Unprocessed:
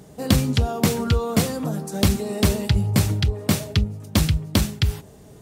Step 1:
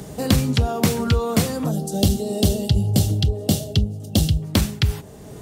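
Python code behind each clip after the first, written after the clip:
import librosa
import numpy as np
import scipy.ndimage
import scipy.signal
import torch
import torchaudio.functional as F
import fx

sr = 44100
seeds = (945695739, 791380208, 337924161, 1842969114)

y = fx.spec_box(x, sr, start_s=1.71, length_s=2.72, low_hz=830.0, high_hz=2700.0, gain_db=-14)
y = fx.band_squash(y, sr, depth_pct=40)
y = y * 10.0 ** (1.0 / 20.0)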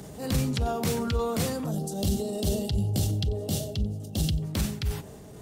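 y = fx.transient(x, sr, attack_db=-8, sustain_db=4)
y = y + 10.0 ** (-22.5 / 20.0) * np.pad(y, (int(90 * sr / 1000.0), 0))[:len(y)]
y = y * 10.0 ** (-6.5 / 20.0)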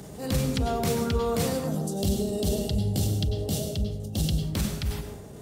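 y = fx.rev_plate(x, sr, seeds[0], rt60_s=0.69, hf_ratio=0.6, predelay_ms=85, drr_db=6.0)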